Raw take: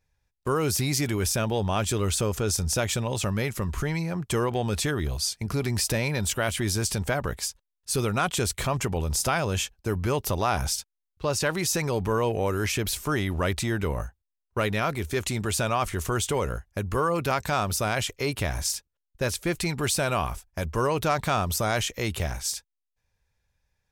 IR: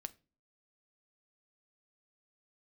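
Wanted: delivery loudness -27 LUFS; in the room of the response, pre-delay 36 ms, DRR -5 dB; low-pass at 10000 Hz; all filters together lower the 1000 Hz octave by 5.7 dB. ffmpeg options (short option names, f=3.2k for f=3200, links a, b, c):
-filter_complex "[0:a]lowpass=10k,equalizer=f=1k:t=o:g=-8,asplit=2[a][b];[1:a]atrim=start_sample=2205,adelay=36[c];[b][c]afir=irnorm=-1:irlink=0,volume=9dB[d];[a][d]amix=inputs=2:normalize=0,volume=-5dB"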